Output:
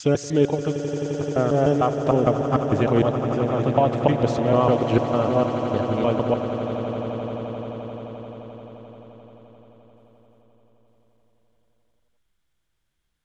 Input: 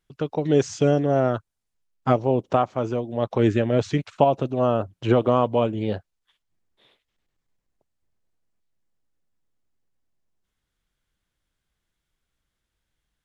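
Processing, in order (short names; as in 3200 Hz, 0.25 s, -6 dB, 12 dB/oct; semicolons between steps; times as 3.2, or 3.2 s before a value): slices in reverse order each 0.151 s, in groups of 6; swelling echo 87 ms, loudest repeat 8, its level -14 dB; Doppler distortion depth 0.1 ms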